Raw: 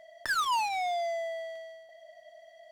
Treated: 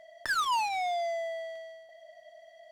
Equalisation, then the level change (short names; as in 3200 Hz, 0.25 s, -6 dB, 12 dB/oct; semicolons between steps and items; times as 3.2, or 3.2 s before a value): high shelf 12000 Hz -4 dB; 0.0 dB